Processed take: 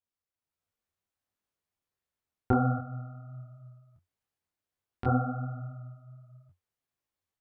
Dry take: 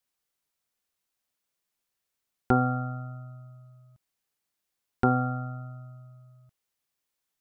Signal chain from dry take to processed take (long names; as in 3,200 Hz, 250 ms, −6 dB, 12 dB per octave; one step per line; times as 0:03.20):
automatic gain control gain up to 7 dB
high-shelf EQ 2,300 Hz −10 dB
0:02.78–0:05.06: downward compressor, threshold −29 dBFS, peak gain reduction 15 dB
parametric band 89 Hz +12 dB 0.4 octaves
micro pitch shift up and down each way 49 cents
level −4.5 dB